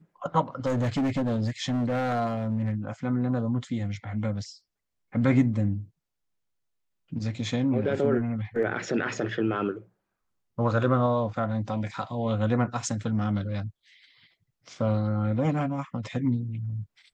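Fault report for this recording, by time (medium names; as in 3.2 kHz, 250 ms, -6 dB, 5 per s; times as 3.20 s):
0.66–2.75 s: clipped -22.5 dBFS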